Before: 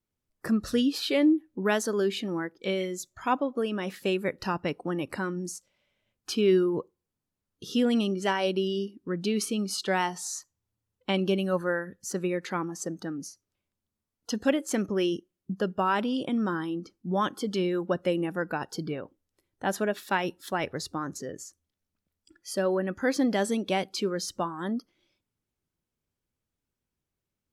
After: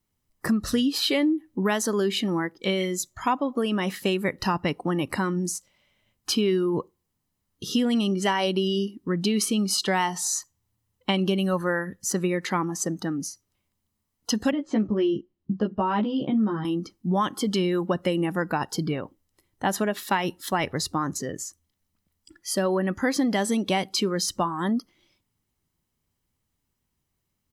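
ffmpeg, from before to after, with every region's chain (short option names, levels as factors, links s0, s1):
-filter_complex "[0:a]asettb=1/sr,asplit=3[s0][s1][s2];[s0]atrim=end=14.514[s3];[s1]atrim=start=14.51:end=16.65,asetpts=PTS-STARTPTS,afade=t=in:d=0.004:c=qsin,afade=t=out:st=2.136:d=0.004:c=qsin,lowpass=f=3900:w=0.5412,lowpass=f=3900:w=1.3066,equalizer=f=2200:w=0.37:g=-11.5,asplit=2[s4][s5];[s5]adelay=14,volume=0.75[s6];[s4][s6]amix=inputs=2:normalize=0,atrim=end_sample=94374[s7];[s2]atrim=start=16.646[s8];[s3][s7]acrossfade=d=0.004:c1=hsin:c2=qsin[s9];[s9][s8]acrossfade=d=0.004:c1=qsin:c2=hsin,highshelf=f=9000:g=4,aecho=1:1:1:0.32,acompressor=threshold=0.0501:ratio=6,volume=2.11"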